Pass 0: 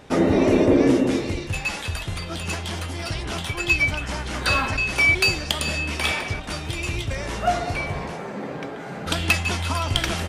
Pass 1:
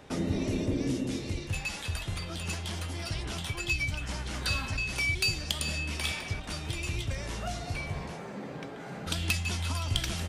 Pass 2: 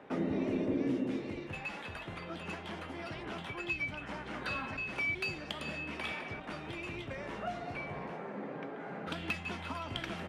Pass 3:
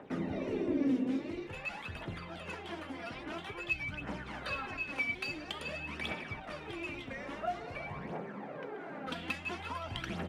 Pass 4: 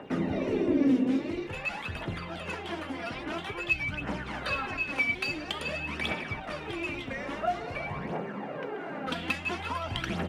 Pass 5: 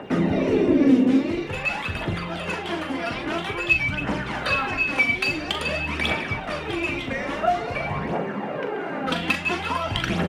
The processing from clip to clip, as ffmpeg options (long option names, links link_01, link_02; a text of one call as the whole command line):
ffmpeg -i in.wav -filter_complex "[0:a]acrossover=split=210|3000[link_01][link_02][link_03];[link_02]acompressor=threshold=-36dB:ratio=3[link_04];[link_01][link_04][link_03]amix=inputs=3:normalize=0,volume=-5dB" out.wav
ffmpeg -i in.wav -filter_complex "[0:a]acrossover=split=170 2600:gain=0.1 1 0.0794[link_01][link_02][link_03];[link_01][link_02][link_03]amix=inputs=3:normalize=0" out.wav
ffmpeg -i in.wav -af "aphaser=in_gain=1:out_gain=1:delay=4.3:decay=0.55:speed=0.49:type=triangular,volume=-2dB" out.wav
ffmpeg -i in.wav -af "aeval=exprs='val(0)+0.000447*sin(2*PI*2800*n/s)':channel_layout=same,volume=6.5dB" out.wav
ffmpeg -i in.wav -filter_complex "[0:a]asplit=2[link_01][link_02];[link_02]adelay=41,volume=-8.5dB[link_03];[link_01][link_03]amix=inputs=2:normalize=0,volume=7.5dB" out.wav